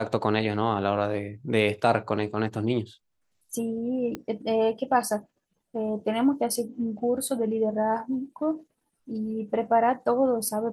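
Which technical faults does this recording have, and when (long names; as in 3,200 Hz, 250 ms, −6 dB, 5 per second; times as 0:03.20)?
0:04.15: click −19 dBFS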